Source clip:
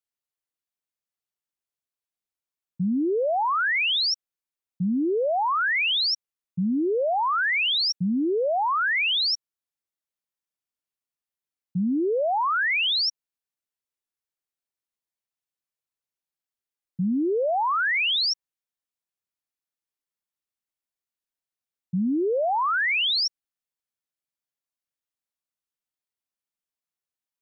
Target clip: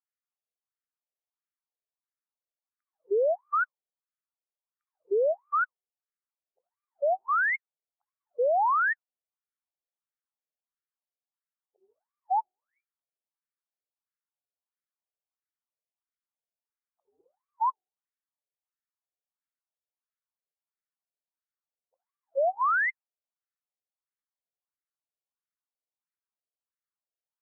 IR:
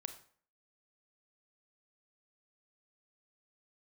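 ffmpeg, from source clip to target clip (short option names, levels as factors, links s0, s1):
-af "asuperstop=centerf=4900:order=4:qfactor=0.57,afftfilt=real='re*between(b*sr/1024,520*pow(1700/520,0.5+0.5*sin(2*PI*1.5*pts/sr))/1.41,520*pow(1700/520,0.5+0.5*sin(2*PI*1.5*pts/sr))*1.41)':imag='im*between(b*sr/1024,520*pow(1700/520,0.5+0.5*sin(2*PI*1.5*pts/sr))/1.41,520*pow(1700/520,0.5+0.5*sin(2*PI*1.5*pts/sr))*1.41)':win_size=1024:overlap=0.75"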